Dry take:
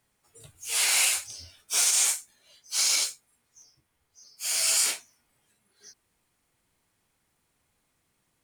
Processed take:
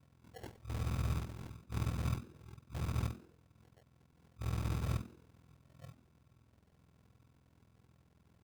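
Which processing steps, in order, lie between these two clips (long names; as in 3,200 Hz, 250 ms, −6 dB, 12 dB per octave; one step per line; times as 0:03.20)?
frequency axis turned over on the octave scale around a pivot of 470 Hz
low-pass filter 8,500 Hz
reversed playback
downward compressor 8 to 1, threshold −38 dBFS, peak gain reduction 18 dB
reversed playback
decimation without filtering 36×
ring modulation 21 Hz
in parallel at −6 dB: wrap-around overflow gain 44.5 dB
on the sum: echo with shifted repeats 92 ms, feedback 31%, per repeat +120 Hz, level −18.5 dB
level +7.5 dB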